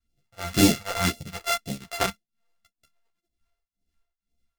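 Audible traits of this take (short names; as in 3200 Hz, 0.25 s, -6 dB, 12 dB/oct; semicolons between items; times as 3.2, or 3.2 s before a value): a buzz of ramps at a fixed pitch in blocks of 64 samples; phasing stages 2, 1.9 Hz, lowest notch 180–1200 Hz; tremolo triangle 2.1 Hz, depth 100%; a shimmering, thickened sound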